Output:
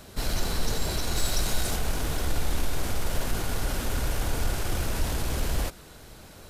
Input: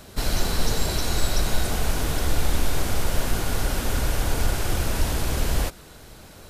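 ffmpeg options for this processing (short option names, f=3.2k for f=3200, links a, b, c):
-filter_complex "[0:a]asettb=1/sr,asplit=3[a][b][c];[a]atrim=end=1.164[d];[b]atrim=start=1.16:end=1.76,asetpts=PTS-STARTPTS,afade=t=in:d=0.004:c=qsin,afade=t=out:st=0.596:d=0.004:c=qsin,equalizer=f=8.5k:w=0.34:g=5[e];[c]atrim=start=1.756[f];[d][e]acrossfade=d=0.004:c1=hsin:c2=qsin[g];[g][f]acrossfade=d=0.004:c1=qsin:c2=hsin,asplit=2[h][i];[i]asoftclip=type=tanh:threshold=-26dB,volume=-5dB[j];[h][j]amix=inputs=2:normalize=0,volume=-6dB"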